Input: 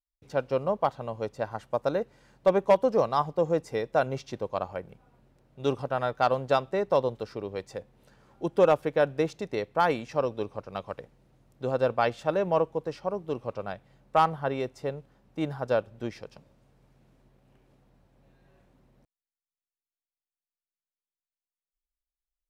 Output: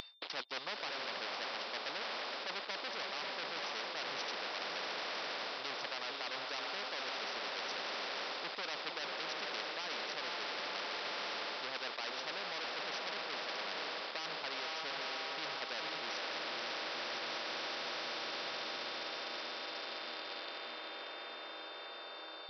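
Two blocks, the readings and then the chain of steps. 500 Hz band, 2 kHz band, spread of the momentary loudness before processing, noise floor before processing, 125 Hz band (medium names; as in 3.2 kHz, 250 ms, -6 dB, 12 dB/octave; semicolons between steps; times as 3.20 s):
-18.0 dB, +0.5 dB, 14 LU, under -85 dBFS, -28.0 dB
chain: reverb removal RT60 0.78 s; transient shaper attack +2 dB, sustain -3 dB; on a send: echo that smears into a reverb 528 ms, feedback 61%, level -10 dB; on the sum: whistle 3.6 kHz -59 dBFS; reverse; compression 5:1, threshold -44 dBFS, peak gain reduction 26 dB; reverse; waveshaping leveller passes 5; high-pass 550 Hz 24 dB/octave; resampled via 11.025 kHz; peak limiter -30 dBFS, peak gain reduction 5.5 dB; spectrum-flattening compressor 4:1; trim +6.5 dB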